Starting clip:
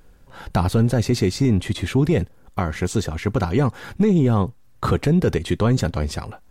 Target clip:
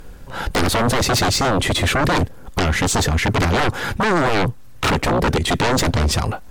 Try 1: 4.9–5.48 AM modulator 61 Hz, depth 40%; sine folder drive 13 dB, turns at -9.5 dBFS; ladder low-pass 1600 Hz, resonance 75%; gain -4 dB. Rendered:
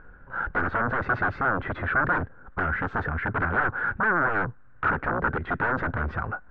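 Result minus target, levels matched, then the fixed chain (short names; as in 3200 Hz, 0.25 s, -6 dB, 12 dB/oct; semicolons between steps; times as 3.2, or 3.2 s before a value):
2000 Hz band +6.0 dB
4.9–5.48 AM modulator 61 Hz, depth 40%; sine folder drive 13 dB, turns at -9.5 dBFS; gain -4 dB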